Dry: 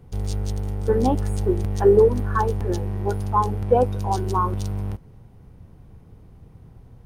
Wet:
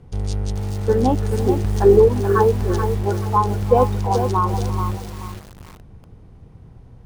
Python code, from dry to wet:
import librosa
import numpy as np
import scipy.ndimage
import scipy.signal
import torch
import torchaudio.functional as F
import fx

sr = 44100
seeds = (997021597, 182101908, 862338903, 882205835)

p1 = scipy.signal.sosfilt(scipy.signal.butter(2, 8800.0, 'lowpass', fs=sr, output='sos'), x)
p2 = p1 + fx.echo_single(p1, sr, ms=345, db=-17.0, dry=0)
p3 = fx.echo_crushed(p2, sr, ms=431, feedback_pct=35, bits=6, wet_db=-7)
y = p3 * 10.0 ** (2.5 / 20.0)